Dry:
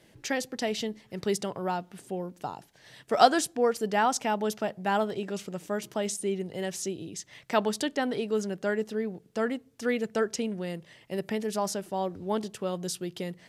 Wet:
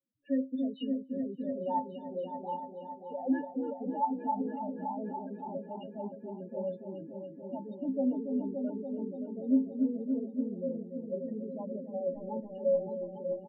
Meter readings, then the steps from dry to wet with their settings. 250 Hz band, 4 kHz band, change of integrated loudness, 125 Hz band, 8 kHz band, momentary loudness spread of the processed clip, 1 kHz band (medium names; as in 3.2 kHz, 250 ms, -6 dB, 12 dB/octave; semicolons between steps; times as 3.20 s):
+0.5 dB, under -20 dB, -5.0 dB, -8.0 dB, under -40 dB, 11 LU, -7.5 dB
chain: level-controlled noise filter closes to 930 Hz, open at -23 dBFS; waveshaping leveller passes 5; peak limiter -12.5 dBFS, peak gain reduction 8.5 dB; loudest bins only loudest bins 4; inharmonic resonator 260 Hz, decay 0.26 s, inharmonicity 0.03; delay with an opening low-pass 286 ms, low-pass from 400 Hz, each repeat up 1 oct, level -3 dB; resampled via 8 kHz; random flutter of the level, depth 55%; trim +3 dB